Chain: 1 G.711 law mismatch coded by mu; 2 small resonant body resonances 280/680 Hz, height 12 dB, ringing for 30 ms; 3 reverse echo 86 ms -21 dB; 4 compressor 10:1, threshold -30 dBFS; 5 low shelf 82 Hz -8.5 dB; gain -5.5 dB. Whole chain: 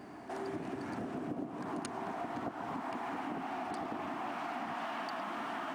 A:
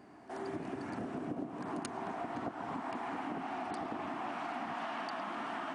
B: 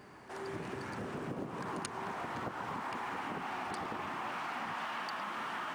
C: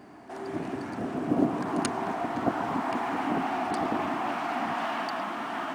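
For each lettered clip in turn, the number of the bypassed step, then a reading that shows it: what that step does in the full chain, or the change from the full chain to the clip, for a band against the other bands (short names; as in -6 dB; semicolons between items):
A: 1, distortion -22 dB; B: 2, 250 Hz band -7.0 dB; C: 4, mean gain reduction 8.0 dB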